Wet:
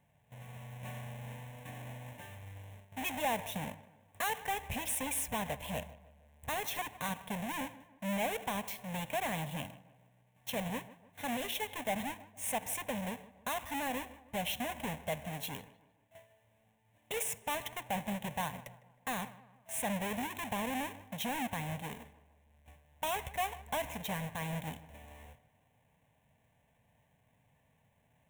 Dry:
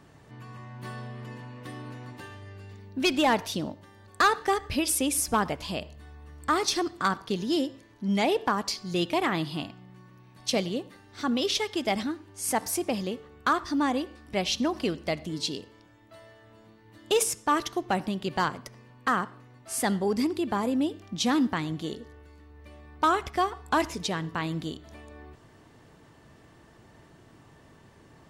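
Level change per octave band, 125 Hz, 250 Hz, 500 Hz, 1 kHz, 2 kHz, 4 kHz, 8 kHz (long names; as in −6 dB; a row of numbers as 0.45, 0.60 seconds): −6.0, −12.5, −10.5, −9.5, −7.5, −10.5, −8.0 decibels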